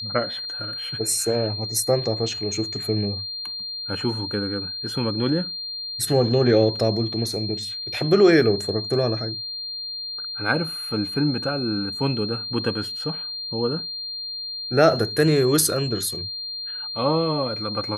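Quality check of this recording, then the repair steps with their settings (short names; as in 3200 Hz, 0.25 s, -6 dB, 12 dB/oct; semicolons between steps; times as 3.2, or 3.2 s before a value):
tone 4200 Hz -29 dBFS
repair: notch 4200 Hz, Q 30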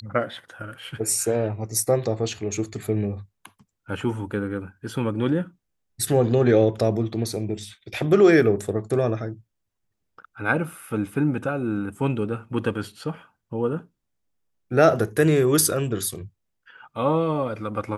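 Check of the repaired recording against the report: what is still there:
none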